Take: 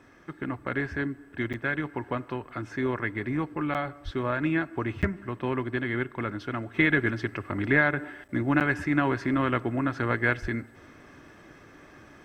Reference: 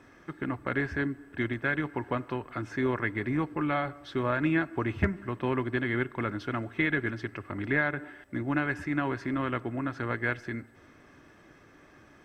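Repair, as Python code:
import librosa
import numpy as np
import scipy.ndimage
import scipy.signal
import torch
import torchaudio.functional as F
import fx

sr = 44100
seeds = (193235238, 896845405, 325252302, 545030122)

y = fx.highpass(x, sr, hz=140.0, slope=24, at=(4.04, 4.16), fade=0.02)
y = fx.highpass(y, sr, hz=140.0, slope=24, at=(10.41, 10.53), fade=0.02)
y = fx.fix_interpolate(y, sr, at_s=(1.53, 3.74, 5.02, 8.28, 8.6), length_ms=7.9)
y = fx.gain(y, sr, db=fx.steps((0.0, 0.0), (6.74, -5.0)))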